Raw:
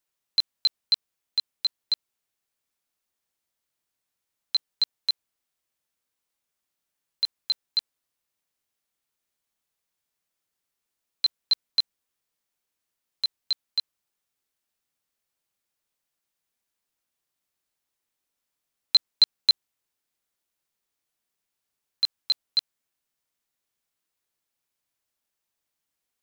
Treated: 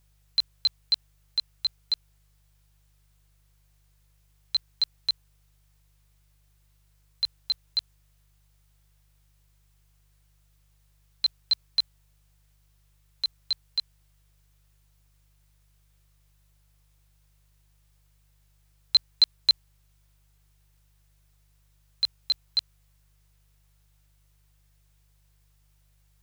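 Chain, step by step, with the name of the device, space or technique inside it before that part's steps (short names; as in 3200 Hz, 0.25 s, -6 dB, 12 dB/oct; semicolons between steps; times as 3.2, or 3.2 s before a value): video cassette with head-switching buzz (buzz 50 Hz, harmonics 3, -63 dBFS -7 dB/oct; white noise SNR 37 dB); gain -1.5 dB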